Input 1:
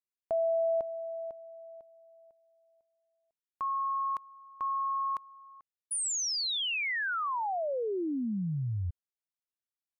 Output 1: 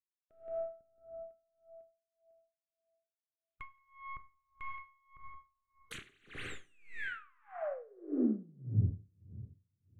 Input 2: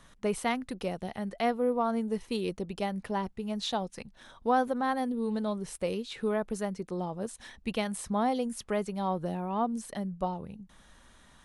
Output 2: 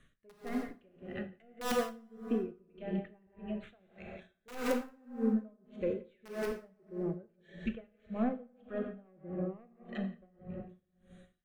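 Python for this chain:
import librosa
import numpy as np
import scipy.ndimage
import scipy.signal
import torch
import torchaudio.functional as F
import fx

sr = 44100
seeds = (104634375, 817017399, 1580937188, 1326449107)

p1 = fx.tracing_dist(x, sr, depth_ms=0.48)
p2 = scipy.signal.sosfilt(scipy.signal.butter(2, 7000.0, 'lowpass', fs=sr, output='sos'), p1)
p3 = fx.env_lowpass_down(p2, sr, base_hz=1100.0, full_db=-29.5)
p4 = fx.noise_reduce_blind(p3, sr, reduce_db=9)
p5 = fx.peak_eq(p4, sr, hz=380.0, db=2.5, octaves=0.35)
p6 = 10.0 ** (-25.0 / 20.0) * np.tanh(p5 / 10.0 ** (-25.0 / 20.0))
p7 = p5 + F.gain(torch.from_numpy(p6), -7.0).numpy()
p8 = fx.fixed_phaser(p7, sr, hz=2200.0, stages=4)
p9 = (np.mod(10.0 ** (22.5 / 20.0) * p8 + 1.0, 2.0) - 1.0) / 10.0 ** (22.5 / 20.0)
p10 = p9 + fx.echo_single(p9, sr, ms=173, db=-12.0, dry=0)
p11 = fx.rev_plate(p10, sr, seeds[0], rt60_s=2.1, hf_ratio=0.6, predelay_ms=0, drr_db=3.0)
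y = p11 * 10.0 ** (-31 * (0.5 - 0.5 * np.cos(2.0 * np.pi * 1.7 * np.arange(len(p11)) / sr)) / 20.0)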